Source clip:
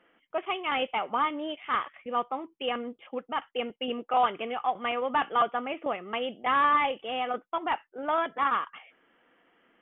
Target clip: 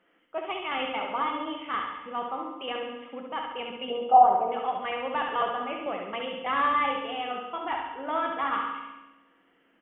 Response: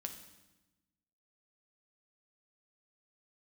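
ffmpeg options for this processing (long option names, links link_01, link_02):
-filter_complex "[0:a]asettb=1/sr,asplit=3[link_01][link_02][link_03];[link_01]atrim=end=3.904[link_04];[link_02]atrim=start=3.9:end=4.52,asetpts=PTS-STARTPTS,afade=type=in:duration=0.004:curve=qsin,afade=type=out:start_time=0.616:duration=0.004:curve=qsin,lowpass=frequency=790:width_type=q:width=4.5[link_05];[link_03]atrim=start=4.516[link_06];[link_04][link_05]acrossfade=duration=0.004:curve1=hsin:curve2=qsin[link_07];[link_07][link_06]acrossfade=duration=0.004:curve1=qsin:curve2=hsin,aecho=1:1:69|138|207|276|345|414|483:0.562|0.315|0.176|0.0988|0.0553|0.031|0.0173[link_08];[1:a]atrim=start_sample=2205[link_09];[link_08][link_09]afir=irnorm=-1:irlink=0"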